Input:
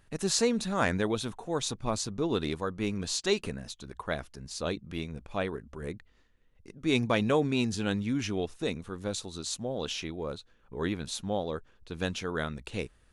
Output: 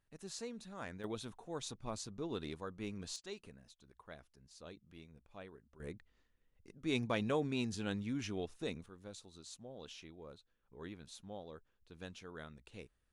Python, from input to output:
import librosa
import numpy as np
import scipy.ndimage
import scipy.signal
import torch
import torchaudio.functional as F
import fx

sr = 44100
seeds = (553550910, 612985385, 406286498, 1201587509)

y = fx.gain(x, sr, db=fx.steps((0.0, -19.0), (1.04, -12.0), (3.16, -20.0), (5.8, -9.0), (8.86, -17.0)))